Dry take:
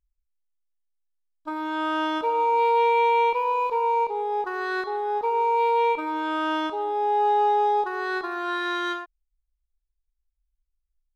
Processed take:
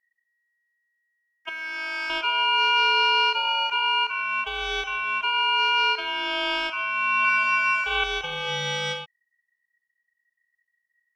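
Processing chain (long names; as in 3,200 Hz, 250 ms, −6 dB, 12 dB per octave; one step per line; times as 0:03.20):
0:01.49–0:02.10: flat-topped bell 1,200 Hz −13 dB
0:07.20–0:08.04: flutter between parallel walls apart 7.9 metres, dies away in 1.2 s
ring modulation 1,900 Hz
level +2.5 dB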